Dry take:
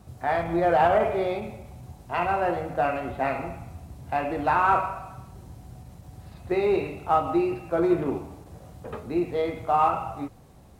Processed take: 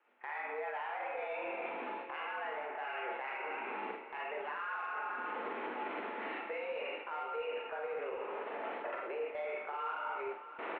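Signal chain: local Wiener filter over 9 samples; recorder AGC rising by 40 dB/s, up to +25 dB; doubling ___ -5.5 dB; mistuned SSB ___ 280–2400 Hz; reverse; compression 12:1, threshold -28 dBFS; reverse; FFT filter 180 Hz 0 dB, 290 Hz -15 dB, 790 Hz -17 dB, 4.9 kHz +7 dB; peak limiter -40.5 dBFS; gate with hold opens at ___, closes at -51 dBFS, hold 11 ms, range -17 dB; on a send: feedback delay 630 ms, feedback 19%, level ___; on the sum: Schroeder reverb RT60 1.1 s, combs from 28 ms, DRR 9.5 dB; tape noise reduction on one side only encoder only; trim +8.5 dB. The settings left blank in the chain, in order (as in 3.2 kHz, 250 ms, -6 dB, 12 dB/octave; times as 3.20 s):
46 ms, +120 Hz, -42 dBFS, -12.5 dB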